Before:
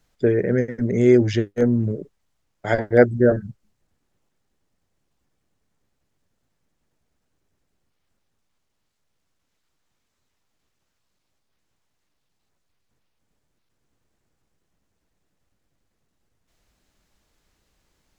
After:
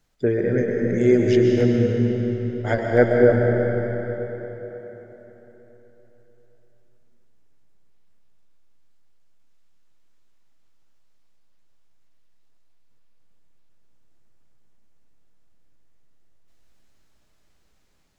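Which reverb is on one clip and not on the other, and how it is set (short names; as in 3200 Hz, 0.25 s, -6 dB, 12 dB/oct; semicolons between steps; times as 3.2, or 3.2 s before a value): digital reverb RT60 4.1 s, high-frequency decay 0.8×, pre-delay 90 ms, DRR -0.5 dB; gain -2.5 dB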